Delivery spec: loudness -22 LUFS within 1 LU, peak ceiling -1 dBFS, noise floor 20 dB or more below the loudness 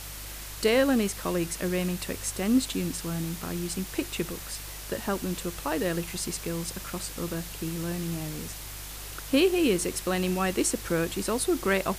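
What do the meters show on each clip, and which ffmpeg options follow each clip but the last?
hum 50 Hz; harmonics up to 150 Hz; hum level -42 dBFS; noise floor -40 dBFS; noise floor target -49 dBFS; loudness -29.0 LUFS; peak -10.5 dBFS; loudness target -22.0 LUFS
-> -af "bandreject=f=50:t=h:w=4,bandreject=f=100:t=h:w=4,bandreject=f=150:t=h:w=4"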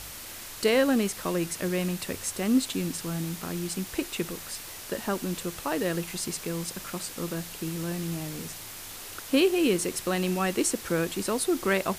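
hum none; noise floor -42 dBFS; noise floor target -49 dBFS
-> -af "afftdn=nr=7:nf=-42"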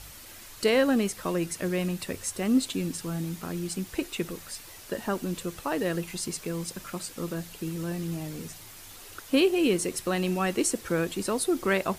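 noise floor -47 dBFS; noise floor target -49 dBFS
-> -af "afftdn=nr=6:nf=-47"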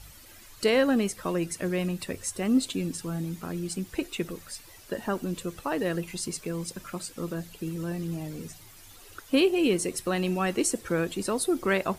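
noise floor -50 dBFS; loudness -29.0 LUFS; peak -11.0 dBFS; loudness target -22.0 LUFS
-> -af "volume=7dB"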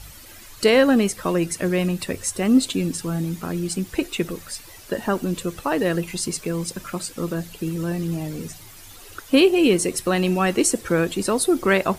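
loudness -22.0 LUFS; peak -4.0 dBFS; noise floor -43 dBFS

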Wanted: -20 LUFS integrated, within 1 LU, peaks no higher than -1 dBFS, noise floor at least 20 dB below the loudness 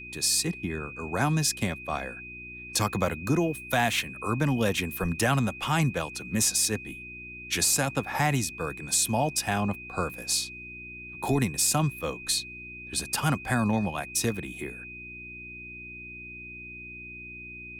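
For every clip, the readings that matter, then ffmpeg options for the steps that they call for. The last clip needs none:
hum 60 Hz; harmonics up to 360 Hz; hum level -50 dBFS; steady tone 2500 Hz; tone level -40 dBFS; loudness -27.0 LUFS; peak -13.0 dBFS; loudness target -20.0 LUFS
-> -af "bandreject=f=60:t=h:w=4,bandreject=f=120:t=h:w=4,bandreject=f=180:t=h:w=4,bandreject=f=240:t=h:w=4,bandreject=f=300:t=h:w=4,bandreject=f=360:t=h:w=4"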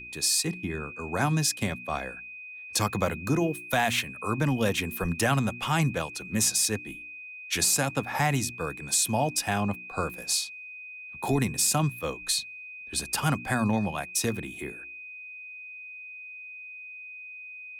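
hum none; steady tone 2500 Hz; tone level -40 dBFS
-> -af "bandreject=f=2.5k:w=30"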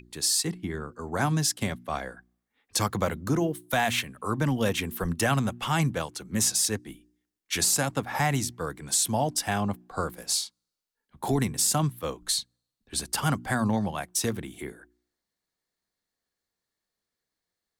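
steady tone none; loudness -27.5 LUFS; peak -13.0 dBFS; loudness target -20.0 LUFS
-> -af "volume=7.5dB"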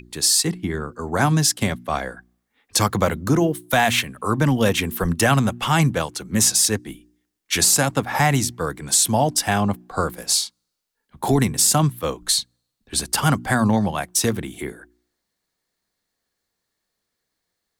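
loudness -20.0 LUFS; peak -5.5 dBFS; noise floor -79 dBFS

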